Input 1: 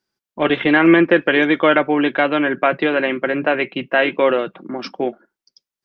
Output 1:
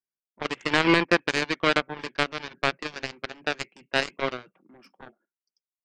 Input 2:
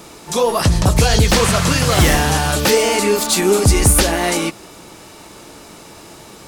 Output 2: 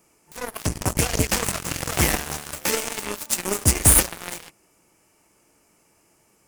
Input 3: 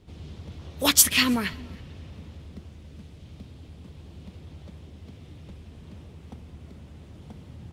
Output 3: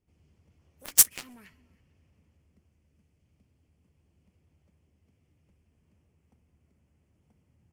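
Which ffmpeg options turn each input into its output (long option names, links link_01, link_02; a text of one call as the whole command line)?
ffmpeg -i in.wav -af "aexciter=amount=1.2:drive=2:freq=2000,aeval=exprs='1.58*(cos(1*acos(clip(val(0)/1.58,-1,1)))-cos(1*PI/2))+0.251*(cos(7*acos(clip(val(0)/1.58,-1,1)))-cos(7*PI/2))':channel_layout=same,volume=-5dB" out.wav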